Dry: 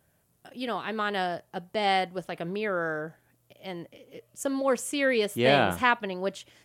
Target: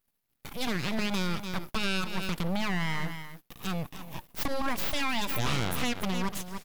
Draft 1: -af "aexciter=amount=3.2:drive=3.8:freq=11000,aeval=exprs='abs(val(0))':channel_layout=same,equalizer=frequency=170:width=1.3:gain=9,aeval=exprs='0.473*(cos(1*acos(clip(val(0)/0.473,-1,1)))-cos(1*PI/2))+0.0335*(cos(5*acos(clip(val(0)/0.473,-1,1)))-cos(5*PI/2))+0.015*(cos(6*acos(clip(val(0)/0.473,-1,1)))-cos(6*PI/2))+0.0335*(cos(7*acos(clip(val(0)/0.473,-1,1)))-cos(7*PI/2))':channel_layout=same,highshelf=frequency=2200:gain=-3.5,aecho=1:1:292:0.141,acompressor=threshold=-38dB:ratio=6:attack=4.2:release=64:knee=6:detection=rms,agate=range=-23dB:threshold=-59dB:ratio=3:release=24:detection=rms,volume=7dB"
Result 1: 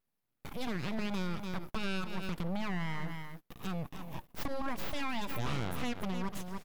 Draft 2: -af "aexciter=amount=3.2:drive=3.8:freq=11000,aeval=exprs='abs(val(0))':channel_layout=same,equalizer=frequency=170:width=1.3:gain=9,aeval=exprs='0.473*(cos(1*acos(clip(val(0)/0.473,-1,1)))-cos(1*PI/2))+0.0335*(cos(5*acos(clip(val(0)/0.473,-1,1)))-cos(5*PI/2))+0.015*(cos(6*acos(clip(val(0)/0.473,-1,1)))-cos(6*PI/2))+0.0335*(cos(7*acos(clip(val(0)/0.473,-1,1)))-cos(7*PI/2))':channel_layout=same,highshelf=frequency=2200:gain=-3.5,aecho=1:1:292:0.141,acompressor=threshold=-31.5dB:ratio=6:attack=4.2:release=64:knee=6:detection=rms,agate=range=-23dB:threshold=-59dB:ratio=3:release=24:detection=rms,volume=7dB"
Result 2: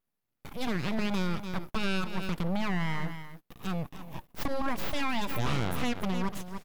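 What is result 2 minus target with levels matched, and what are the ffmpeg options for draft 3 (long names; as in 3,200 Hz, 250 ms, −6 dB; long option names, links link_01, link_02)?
4,000 Hz band −3.5 dB
-af "aexciter=amount=3.2:drive=3.8:freq=11000,aeval=exprs='abs(val(0))':channel_layout=same,equalizer=frequency=170:width=1.3:gain=9,aeval=exprs='0.473*(cos(1*acos(clip(val(0)/0.473,-1,1)))-cos(1*PI/2))+0.0335*(cos(5*acos(clip(val(0)/0.473,-1,1)))-cos(5*PI/2))+0.015*(cos(6*acos(clip(val(0)/0.473,-1,1)))-cos(6*PI/2))+0.0335*(cos(7*acos(clip(val(0)/0.473,-1,1)))-cos(7*PI/2))':channel_layout=same,highshelf=frequency=2200:gain=5,aecho=1:1:292:0.141,acompressor=threshold=-31.5dB:ratio=6:attack=4.2:release=64:knee=6:detection=rms,agate=range=-23dB:threshold=-59dB:ratio=3:release=24:detection=rms,volume=7dB"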